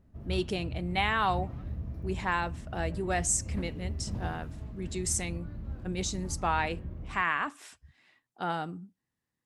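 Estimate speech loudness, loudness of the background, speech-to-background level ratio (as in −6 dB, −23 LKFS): −32.5 LKFS, −40.0 LKFS, 7.5 dB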